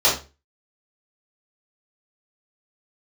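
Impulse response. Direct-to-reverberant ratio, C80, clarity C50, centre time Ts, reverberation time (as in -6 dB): -9.5 dB, 13.0 dB, 6.0 dB, 30 ms, 0.30 s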